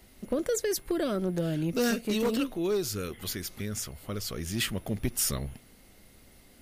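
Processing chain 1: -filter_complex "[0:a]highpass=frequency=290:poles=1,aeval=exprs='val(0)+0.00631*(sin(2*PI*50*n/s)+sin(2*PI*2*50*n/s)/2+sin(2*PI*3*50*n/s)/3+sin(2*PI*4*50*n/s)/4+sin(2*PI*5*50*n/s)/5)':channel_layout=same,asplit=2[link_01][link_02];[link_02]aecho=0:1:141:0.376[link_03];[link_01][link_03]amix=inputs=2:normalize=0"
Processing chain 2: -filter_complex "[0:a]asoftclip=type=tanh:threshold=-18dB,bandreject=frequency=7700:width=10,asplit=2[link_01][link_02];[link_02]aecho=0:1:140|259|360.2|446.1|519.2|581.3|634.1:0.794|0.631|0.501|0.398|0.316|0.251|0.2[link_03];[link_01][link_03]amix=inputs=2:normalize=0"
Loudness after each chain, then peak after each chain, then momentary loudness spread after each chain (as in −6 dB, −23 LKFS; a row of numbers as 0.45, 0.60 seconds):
−32.0, −27.5 LKFS; −16.0, −13.0 dBFS; 16, 7 LU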